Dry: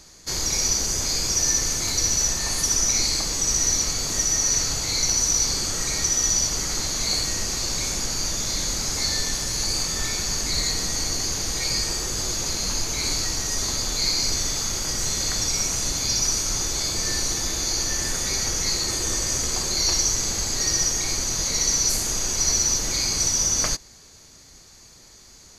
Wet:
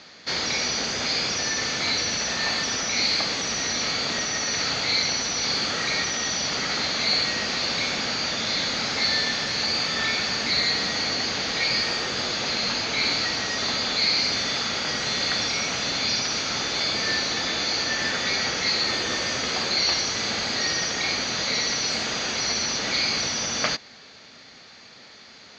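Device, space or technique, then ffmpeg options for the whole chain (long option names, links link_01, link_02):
overdrive pedal into a guitar cabinet: -filter_complex "[0:a]asplit=2[link_01][link_02];[link_02]highpass=frequency=720:poles=1,volume=14dB,asoftclip=type=tanh:threshold=-7dB[link_03];[link_01][link_03]amix=inputs=2:normalize=0,lowpass=frequency=7100:poles=1,volume=-6dB,highpass=110,equalizer=frequency=230:width_type=q:width=4:gain=5,equalizer=frequency=350:width_type=q:width=4:gain=-5,equalizer=frequency=1000:width_type=q:width=4:gain=-6,lowpass=frequency=4000:width=0.5412,lowpass=frequency=4000:width=1.3066,volume=1.5dB"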